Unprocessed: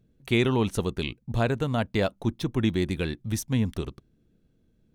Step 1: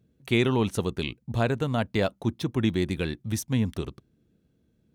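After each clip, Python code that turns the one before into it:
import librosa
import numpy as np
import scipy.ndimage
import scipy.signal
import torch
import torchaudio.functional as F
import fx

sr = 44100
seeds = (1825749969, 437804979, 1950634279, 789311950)

y = scipy.signal.sosfilt(scipy.signal.butter(2, 62.0, 'highpass', fs=sr, output='sos'), x)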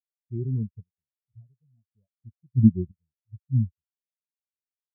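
y = fx.low_shelf(x, sr, hz=180.0, db=10.0)
y = fx.tremolo_random(y, sr, seeds[0], hz=2.4, depth_pct=80)
y = fx.spectral_expand(y, sr, expansion=4.0)
y = F.gain(torch.from_numpy(y), 4.5).numpy()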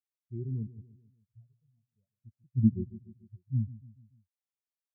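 y = fx.echo_feedback(x, sr, ms=145, feedback_pct=49, wet_db=-17.0)
y = F.gain(torch.from_numpy(y), -7.0).numpy()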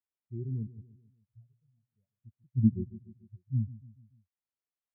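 y = fx.air_absorb(x, sr, metres=380.0)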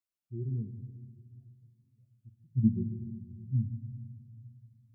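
y = x + 10.0 ** (-24.0 / 20.0) * np.pad(x, (int(414 * sr / 1000.0), 0))[:len(x)]
y = fx.room_shoebox(y, sr, seeds[1], volume_m3=2100.0, walls='mixed', distance_m=0.69)
y = fx.notch_cascade(y, sr, direction='rising', hz=1.0)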